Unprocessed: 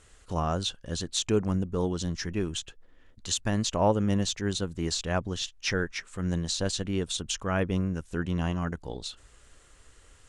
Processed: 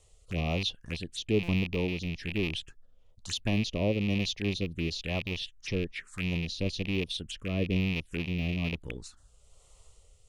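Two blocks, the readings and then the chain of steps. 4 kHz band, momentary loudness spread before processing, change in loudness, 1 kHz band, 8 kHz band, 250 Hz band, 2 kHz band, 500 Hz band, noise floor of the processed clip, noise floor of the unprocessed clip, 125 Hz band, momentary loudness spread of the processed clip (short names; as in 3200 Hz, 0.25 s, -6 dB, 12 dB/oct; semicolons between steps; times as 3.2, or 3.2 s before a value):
-2.0 dB, 9 LU, -2.0 dB, -11.5 dB, -12.0 dB, -1.5 dB, +1.0 dB, -3.5 dB, -61 dBFS, -57 dBFS, -1.0 dB, 8 LU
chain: rattling part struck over -36 dBFS, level -19 dBFS; envelope phaser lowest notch 250 Hz, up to 1500 Hz, full sweep at -26.5 dBFS; rotary speaker horn 1.1 Hz; stuck buffer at 1.43, samples 256, times 8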